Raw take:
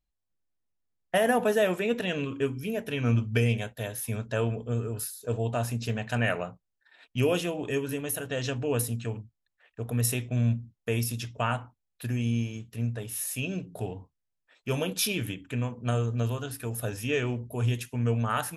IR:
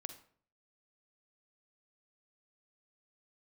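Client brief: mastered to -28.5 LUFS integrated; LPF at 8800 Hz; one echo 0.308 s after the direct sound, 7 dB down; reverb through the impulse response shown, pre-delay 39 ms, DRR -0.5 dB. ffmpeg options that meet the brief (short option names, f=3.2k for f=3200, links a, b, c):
-filter_complex "[0:a]lowpass=8.8k,aecho=1:1:308:0.447,asplit=2[a][b];[1:a]atrim=start_sample=2205,adelay=39[c];[b][c]afir=irnorm=-1:irlink=0,volume=4dB[d];[a][d]amix=inputs=2:normalize=0,volume=-2dB"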